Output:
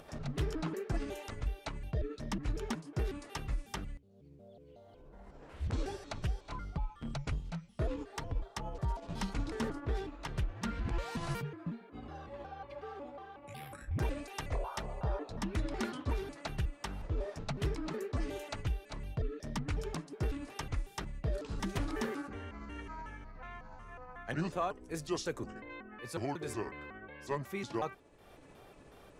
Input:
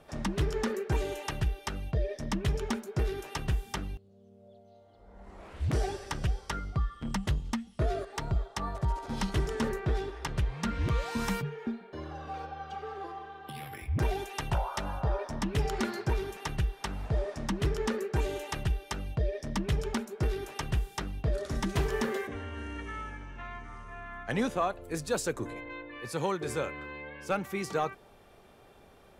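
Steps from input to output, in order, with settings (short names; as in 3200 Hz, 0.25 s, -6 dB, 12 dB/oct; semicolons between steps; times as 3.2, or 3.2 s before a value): trilling pitch shifter -5.5 st, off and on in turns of 0.183 s; upward compressor, threshold -43 dBFS; gain -5 dB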